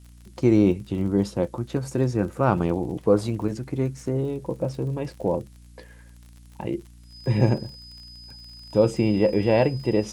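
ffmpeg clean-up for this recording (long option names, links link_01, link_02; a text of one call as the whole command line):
ffmpeg -i in.wav -af "adeclick=threshold=4,bandreject=frequency=59.1:width_type=h:width=4,bandreject=frequency=118.2:width_type=h:width=4,bandreject=frequency=177.3:width_type=h:width=4,bandreject=frequency=236.4:width_type=h:width=4,bandreject=frequency=295.5:width_type=h:width=4,bandreject=frequency=5000:width=30,agate=range=-21dB:threshold=-40dB" out.wav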